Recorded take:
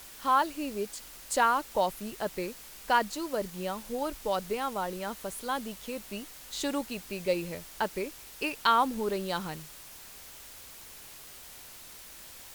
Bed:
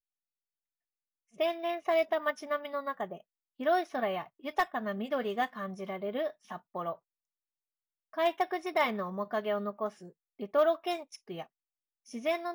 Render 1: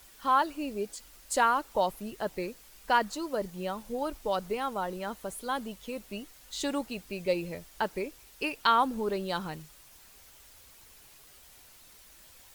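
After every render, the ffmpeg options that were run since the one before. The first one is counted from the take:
ffmpeg -i in.wav -af "afftdn=noise_reduction=8:noise_floor=-48" out.wav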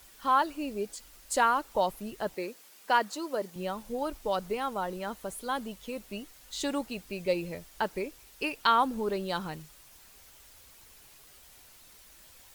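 ffmpeg -i in.wav -filter_complex "[0:a]asettb=1/sr,asplit=3[link_01][link_02][link_03];[link_01]atrim=end=2.344[link_04];[link_02]atrim=start=2.34:end=3.56,asetpts=PTS-STARTPTS,afade=type=in:duration=0.004:curve=qsin,afade=type=out:start_time=1.216:duration=0.004:curve=qsin,highpass=240[link_05];[link_03]atrim=start=3.556[link_06];[link_04][link_05]acrossfade=duration=0.004:curve1=hsin:curve2=qsin[link_07];[link_07][link_06]acrossfade=duration=0.004:curve1=qsin:curve2=hsin" out.wav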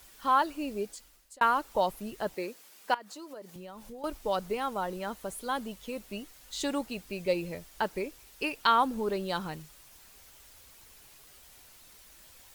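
ffmpeg -i in.wav -filter_complex "[0:a]asettb=1/sr,asplit=3[link_01][link_02][link_03];[link_01]atrim=end=2.944[link_04];[link_02]atrim=start=2.94:end=4.04,asetpts=PTS-STARTPTS,afade=type=in:duration=0.004:curve=qsin,afade=type=out:start_time=1.096:duration=0.004:curve=qsin,acompressor=threshold=-42dB:ratio=5:attack=3.2:release=140:knee=1:detection=peak[link_05];[link_03]atrim=start=4.036[link_06];[link_04][link_05]acrossfade=duration=0.004:curve1=hsin:curve2=qsin[link_07];[link_07][link_06]acrossfade=duration=0.004:curve1=qsin:curve2=hsin,asplit=2[link_08][link_09];[link_08]atrim=end=1.41,asetpts=PTS-STARTPTS,afade=type=out:start_time=0.79:duration=0.62[link_10];[link_09]atrim=start=1.41,asetpts=PTS-STARTPTS,afade=type=in:duration=0.004:curve=hsin[link_11];[link_10][link_11]concat=n=2:v=0:a=1" out.wav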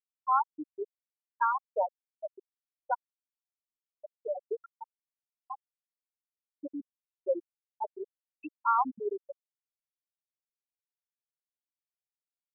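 ffmpeg -i in.wav -af "afftfilt=real='re*gte(hypot(re,im),0.282)':imag='im*gte(hypot(re,im),0.282)':win_size=1024:overlap=0.75,lowpass=1600" out.wav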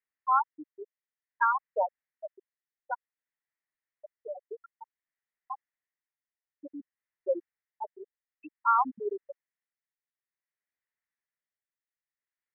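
ffmpeg -i in.wav -af "lowpass=frequency=1900:width_type=q:width=6,tremolo=f=0.55:d=0.57" out.wav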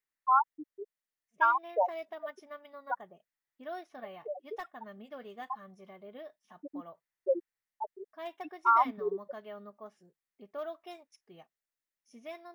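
ffmpeg -i in.wav -i bed.wav -filter_complex "[1:a]volume=-13.5dB[link_01];[0:a][link_01]amix=inputs=2:normalize=0" out.wav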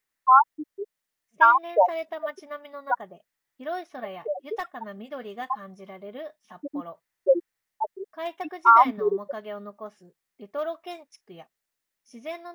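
ffmpeg -i in.wav -af "volume=9dB" out.wav

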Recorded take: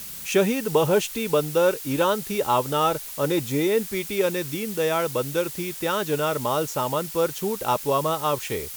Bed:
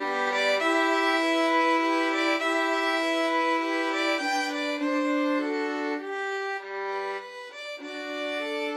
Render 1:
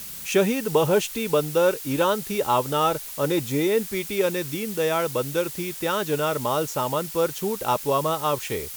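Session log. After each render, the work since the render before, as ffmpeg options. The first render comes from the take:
ffmpeg -i in.wav -af anull out.wav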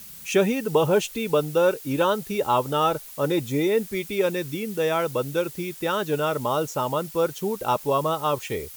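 ffmpeg -i in.wav -af "afftdn=noise_reduction=7:noise_floor=-37" out.wav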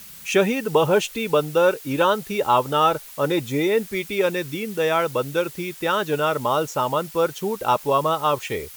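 ffmpeg -i in.wav -af "equalizer=frequency=1700:width=0.4:gain=5" out.wav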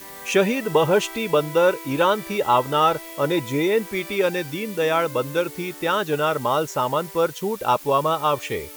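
ffmpeg -i in.wav -i bed.wav -filter_complex "[1:a]volume=-14.5dB[link_01];[0:a][link_01]amix=inputs=2:normalize=0" out.wav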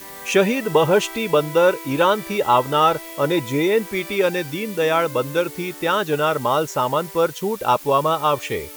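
ffmpeg -i in.wav -af "volume=2dB" out.wav

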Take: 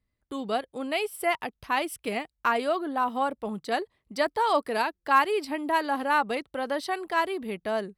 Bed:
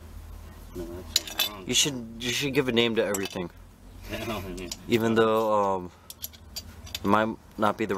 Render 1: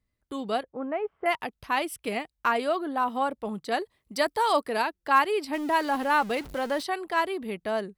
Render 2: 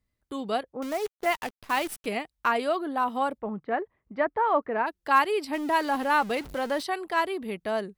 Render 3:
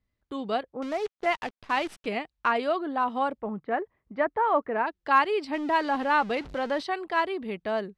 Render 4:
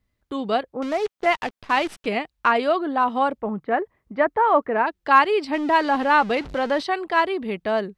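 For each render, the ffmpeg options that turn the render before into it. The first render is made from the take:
ffmpeg -i in.wav -filter_complex "[0:a]asettb=1/sr,asplit=3[link_01][link_02][link_03];[link_01]atrim=end=0.634[link_04];[link_02]atrim=start=0.63:end=1.26,asetpts=PTS-STARTPTS,afade=type=in:duration=0.004:curve=qsin,afade=type=out:start_time=0.626:duration=0.004:curve=qsin,lowpass=frequency=1600:width=0.5412,lowpass=frequency=1600:width=1.3066[link_05];[link_03]atrim=start=1.256[link_06];[link_04][link_05]acrossfade=duration=0.004:curve1=hsin:curve2=qsin[link_07];[link_07][link_06]acrossfade=duration=0.004:curve1=qsin:curve2=hsin,asettb=1/sr,asplit=3[link_08][link_09][link_10];[link_08]atrim=end=3.804[link_11];[link_09]atrim=start=3.8:end=4.63,asetpts=PTS-STARTPTS,afade=type=in:duration=0.004:curve=qsin,afade=type=out:start_time=0.826:duration=0.004:curve=qsin,highshelf=frequency=5300:gain=9[link_12];[link_10]atrim=start=4.626[link_13];[link_11][link_12]acrossfade=duration=0.004:curve1=hsin:curve2=qsin[link_14];[link_14][link_13]acrossfade=duration=0.004:curve1=qsin:curve2=hsin,asettb=1/sr,asplit=3[link_15][link_16][link_17];[link_15]atrim=end=5.534[link_18];[link_16]atrim=start=5.53:end=6.83,asetpts=PTS-STARTPTS,afade=type=in:duration=0.004:curve=qsin,afade=type=out:start_time=1.296:duration=0.004:curve=qsin,aeval=exprs='val(0)+0.5*0.0141*sgn(val(0))':channel_layout=same[link_19];[link_17]atrim=start=6.826[link_20];[link_18][link_19]acrossfade=duration=0.004:curve1=hsin:curve2=qsin[link_21];[link_21][link_20]acrossfade=duration=0.004:curve1=qsin:curve2=hsin" out.wav
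ffmpeg -i in.wav -filter_complex "[0:a]asettb=1/sr,asplit=3[link_01][link_02][link_03];[link_01]atrim=end=0.824[link_04];[link_02]atrim=start=0.82:end=2.06,asetpts=PTS-STARTPTS,afade=type=in:duration=0.004:curve=qsin,afade=type=out:start_time=1.236:duration=0.004:curve=qsin,acrusher=bits=7:dc=4:mix=0:aa=0.000001[link_05];[link_03]atrim=start=2.056[link_06];[link_04][link_05]acrossfade=duration=0.004:curve1=hsin:curve2=qsin[link_07];[link_07][link_06]acrossfade=duration=0.004:curve1=qsin:curve2=hsin,asplit=3[link_08][link_09][link_10];[link_08]afade=type=out:start_time=3.38:duration=0.02[link_11];[link_09]lowpass=frequency=2000:width=0.5412,lowpass=frequency=2000:width=1.3066,afade=type=in:start_time=3.38:duration=0.02,afade=type=out:start_time=4.86:duration=0.02[link_12];[link_10]afade=type=in:start_time=4.86:duration=0.02[link_13];[link_11][link_12][link_13]amix=inputs=3:normalize=0" out.wav
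ffmpeg -i in.wav -af "lowpass=4700" out.wav
ffmpeg -i in.wav -af "volume=6dB" out.wav

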